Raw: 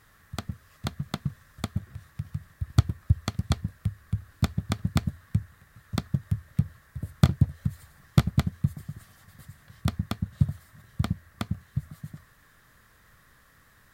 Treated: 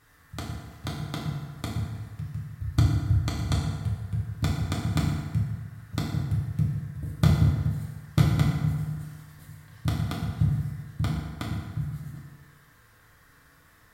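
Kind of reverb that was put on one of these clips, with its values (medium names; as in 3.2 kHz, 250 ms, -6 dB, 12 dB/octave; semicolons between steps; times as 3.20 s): FDN reverb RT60 1.6 s, low-frequency decay 0.75×, high-frequency decay 0.65×, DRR -4.5 dB; trim -4 dB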